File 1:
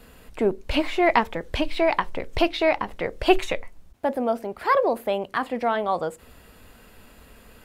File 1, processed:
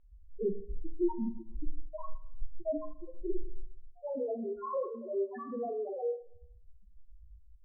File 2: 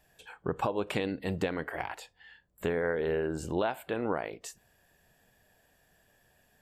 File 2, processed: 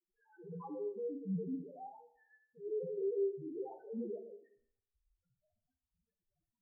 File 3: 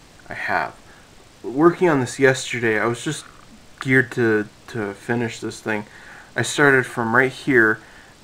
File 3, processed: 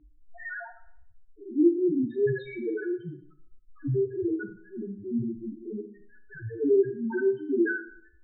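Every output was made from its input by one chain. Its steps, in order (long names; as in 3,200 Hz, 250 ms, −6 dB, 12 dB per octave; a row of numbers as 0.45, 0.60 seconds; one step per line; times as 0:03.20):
spectrum averaged block by block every 100 ms
low-pass that shuts in the quiet parts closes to 1,500 Hz, open at −16 dBFS
dynamic equaliser 680 Hz, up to −7 dB, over −39 dBFS, Q 2.3
multi-voice chorus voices 4, 0.68 Hz, delay 20 ms, depth 2.9 ms
bit reduction 11 bits
spectral peaks only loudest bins 1
high-frequency loss of the air 310 metres
four-comb reverb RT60 0.65 s, combs from 27 ms, DRR 9 dB
level +5.5 dB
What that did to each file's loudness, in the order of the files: −13.5, −8.0, −8.5 LU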